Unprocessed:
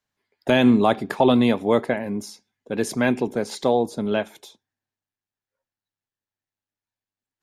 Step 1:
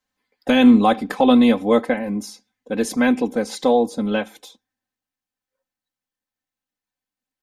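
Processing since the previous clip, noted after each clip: comb 3.9 ms, depth 85%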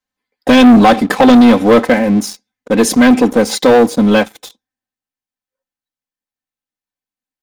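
sample leveller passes 3; gain +2 dB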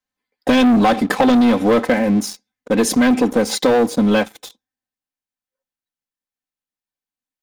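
compressor, threshold -8 dBFS, peak gain reduction 5 dB; gain -3 dB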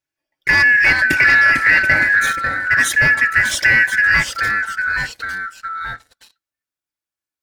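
four-band scrambler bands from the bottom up 2143; echoes that change speed 0.314 s, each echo -2 st, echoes 2, each echo -6 dB

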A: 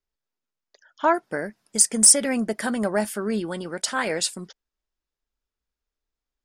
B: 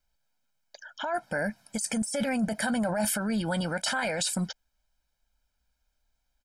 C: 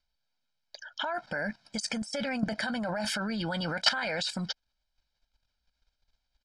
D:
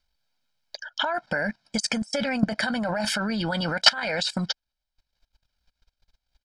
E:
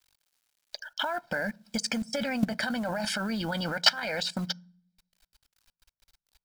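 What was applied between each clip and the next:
negative-ratio compressor -28 dBFS, ratio -1; limiter -22.5 dBFS, peak gain reduction 11 dB; comb 1.3 ms, depth 83%; gain +1.5 dB
dynamic EQ 1400 Hz, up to +4 dB, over -42 dBFS, Q 0.94; synth low-pass 4500 Hz, resonance Q 2.3; level quantiser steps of 12 dB; gain +4 dB
transient shaper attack +3 dB, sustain -10 dB; gain +5.5 dB
companded quantiser 6-bit; on a send at -24 dB: reverb RT60 0.45 s, pre-delay 3 ms; on the sum: mismatched tape noise reduction encoder only; gain -4.5 dB

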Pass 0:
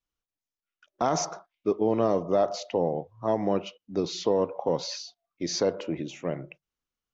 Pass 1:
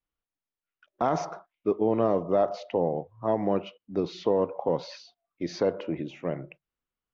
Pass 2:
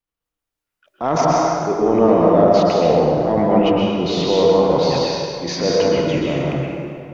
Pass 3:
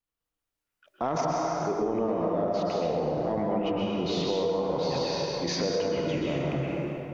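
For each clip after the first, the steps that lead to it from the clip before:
LPF 2800 Hz 12 dB/oct
transient shaper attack -7 dB, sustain +9 dB; AGC gain up to 7 dB; plate-style reverb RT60 2.3 s, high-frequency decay 0.7×, pre-delay 0.105 s, DRR -3.5 dB
compressor, threshold -22 dBFS, peak gain reduction 13 dB; gain -3 dB

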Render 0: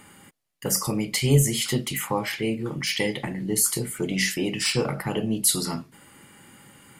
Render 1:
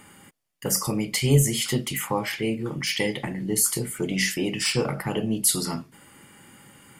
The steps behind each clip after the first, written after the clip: notch 4000 Hz, Q 18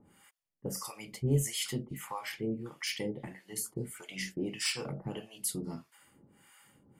harmonic tremolo 1.6 Hz, depth 100%, crossover 710 Hz; gain -7 dB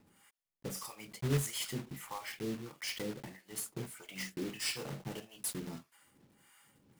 block floating point 3-bit; gain -4 dB

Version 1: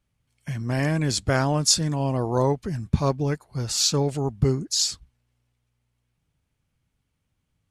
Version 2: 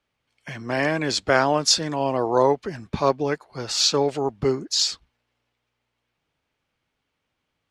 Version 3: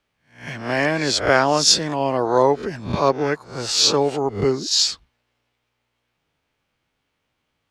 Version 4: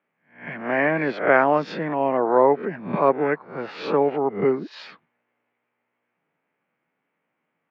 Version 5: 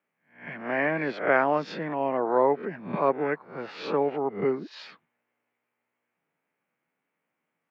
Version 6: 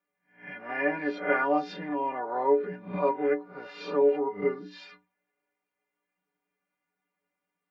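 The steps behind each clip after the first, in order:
three-band isolator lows -17 dB, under 300 Hz, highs -16 dB, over 5400 Hz; gain +6 dB
spectral swells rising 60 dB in 0.40 s; gain +2 dB
elliptic band-pass 170–2200 Hz, stop band 60 dB
high shelf 4200 Hz +6 dB; gain -5.5 dB
metallic resonator 87 Hz, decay 0.44 s, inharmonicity 0.03; gain +7.5 dB

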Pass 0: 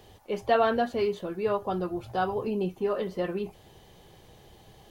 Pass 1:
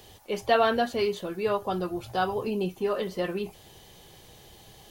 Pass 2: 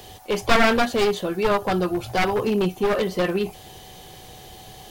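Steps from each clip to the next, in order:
high shelf 2500 Hz +9.5 dB
one-sided fold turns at -25.5 dBFS; whine 750 Hz -57 dBFS; gain +8 dB

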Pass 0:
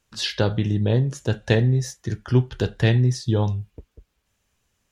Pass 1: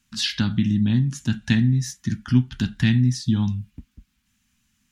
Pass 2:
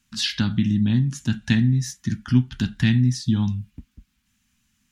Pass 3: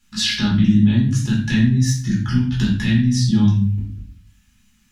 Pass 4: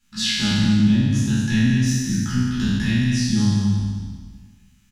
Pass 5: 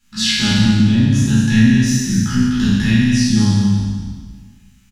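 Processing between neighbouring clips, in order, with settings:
in parallel at -2 dB: compressor, threshold -27 dBFS, peak gain reduction 14 dB; on the sum: EQ curve 110 Hz 0 dB, 240 Hz +11 dB, 470 Hz -26 dB, 790 Hz -8 dB, 1500 Hz +1 dB, 2400 Hz +3 dB; gain -4.5 dB
nothing audible
limiter -16 dBFS, peak gain reduction 10 dB; reverb RT60 0.55 s, pre-delay 5 ms, DRR -5 dB
spectral trails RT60 1.63 s; echo 0.217 s -7.5 dB; gain -5.5 dB
doubler 36 ms -6 dB; gain +4.5 dB

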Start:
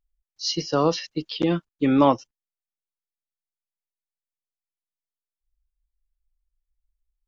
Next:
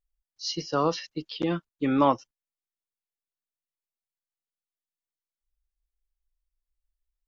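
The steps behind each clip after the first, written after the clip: dynamic EQ 1300 Hz, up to +5 dB, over -34 dBFS, Q 1.1; gain -5.5 dB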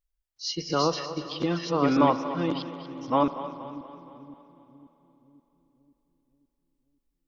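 reverse delay 0.656 s, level -1.5 dB; split-band echo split 330 Hz, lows 0.529 s, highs 0.237 s, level -13 dB; reverb RT60 3.5 s, pre-delay 41 ms, DRR 12.5 dB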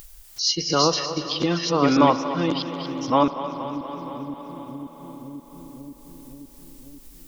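high shelf 4600 Hz +11.5 dB; upward compressor, threshold -26 dBFS; gain +4 dB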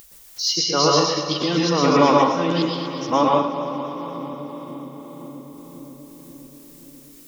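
HPF 180 Hz 6 dB/oct; plate-style reverb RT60 0.52 s, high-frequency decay 0.75×, pre-delay 0.105 s, DRR -1.5 dB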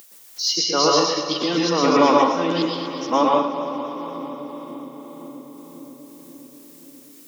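HPF 190 Hz 24 dB/oct

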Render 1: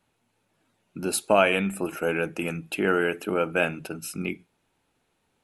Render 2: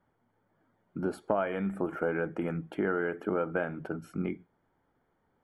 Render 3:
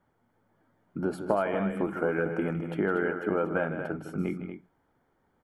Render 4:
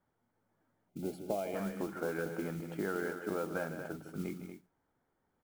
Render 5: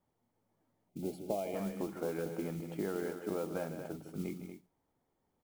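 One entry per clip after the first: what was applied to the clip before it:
compressor 4:1, threshold -26 dBFS, peak gain reduction 10.5 dB; polynomial smoothing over 41 samples
loudspeakers at several distances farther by 54 m -10 dB, 81 m -9 dB; gain +2 dB
modulation noise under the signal 19 dB; spectral gain 0.89–1.55, 860–2000 Hz -13 dB; gain -8.5 dB
bell 1500 Hz -10 dB 0.51 oct

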